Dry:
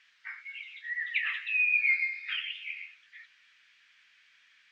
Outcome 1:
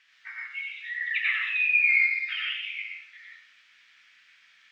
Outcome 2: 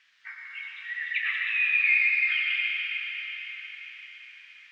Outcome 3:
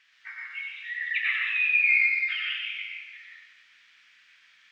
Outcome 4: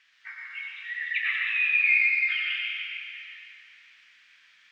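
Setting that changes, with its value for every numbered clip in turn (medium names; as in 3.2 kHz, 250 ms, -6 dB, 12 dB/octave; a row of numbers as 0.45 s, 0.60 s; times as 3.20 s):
plate-style reverb, RT60: 0.53 s, 5.3 s, 1.2 s, 2.5 s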